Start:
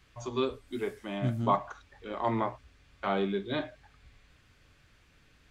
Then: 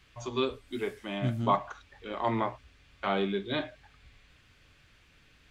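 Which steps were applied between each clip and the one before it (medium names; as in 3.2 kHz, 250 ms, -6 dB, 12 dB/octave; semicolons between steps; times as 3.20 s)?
peaking EQ 2.9 kHz +4.5 dB 1.3 oct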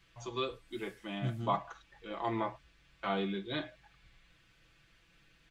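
comb 6 ms; trim -6 dB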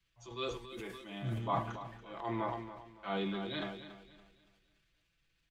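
feedback delay 283 ms, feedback 47%, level -10.5 dB; transient shaper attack -4 dB, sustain +8 dB; three bands expanded up and down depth 40%; trim -3 dB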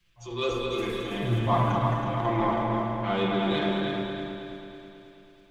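in parallel at -9 dB: saturation -36.5 dBFS, distortion -9 dB; on the sum: multi-head delay 108 ms, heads second and third, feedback 56%, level -6.5 dB; reverberation RT60 1.4 s, pre-delay 6 ms, DRR -0.5 dB; trim +5 dB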